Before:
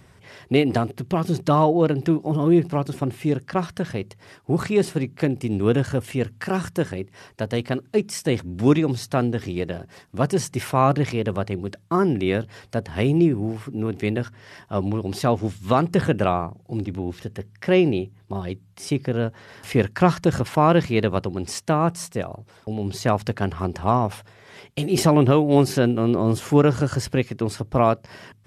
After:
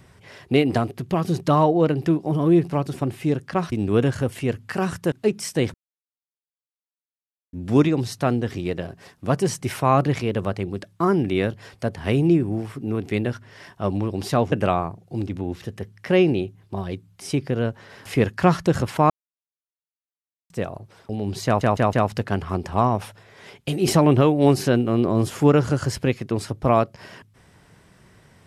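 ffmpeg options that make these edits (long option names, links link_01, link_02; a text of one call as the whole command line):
ffmpeg -i in.wav -filter_complex "[0:a]asplit=10[link_01][link_02][link_03][link_04][link_05][link_06][link_07][link_08][link_09][link_10];[link_01]atrim=end=3.722[link_11];[link_02]atrim=start=5.438:end=6.842[link_12];[link_03]atrim=start=7.818:end=8.44,asetpts=PTS-STARTPTS,afade=type=out:start_time=0.618:duration=0.004:curve=hsin,apad=pad_dur=1.79[link_13];[link_04]atrim=start=8.44:end=15.432,asetpts=PTS-STARTPTS,afade=type=in:duration=0.004:curve=hsin[link_14];[link_05]atrim=start=16.098:end=20.68,asetpts=PTS-STARTPTS,afade=type=out:start_time=4.578:duration=0.004:curve=hsin[link_15];[link_06]atrim=start=20.68:end=22.08,asetpts=PTS-STARTPTS,volume=0[link_16];[link_07]atrim=start=22.08:end=23.192,asetpts=PTS-STARTPTS,afade=type=in:duration=0.004:curve=hsin[link_17];[link_08]atrim=start=23.028:end=23.192[link_18];[link_09]atrim=start=23.028:end=23.192[link_19];[link_10]atrim=start=23.028[link_20];[link_11][link_12]acrossfade=duration=0.004:curve1=hsin:curve2=hsin[link_21];[link_13][link_14]concat=n=2:v=0:a=1[link_22];[link_21][link_22]acrossfade=duration=0.004:curve1=hsin:curve2=hsin[link_23];[link_15][link_16][link_17]concat=n=3:v=0:a=1[link_24];[link_23][link_24]acrossfade=duration=0.004:curve1=hsin:curve2=hsin[link_25];[link_25][link_18]acrossfade=duration=0.004:curve1=hsin:curve2=hsin[link_26];[link_26][link_19]acrossfade=duration=0.004:curve1=hsin:curve2=hsin[link_27];[link_27][link_20]acrossfade=duration=0.004:curve1=hsin:curve2=hsin" out.wav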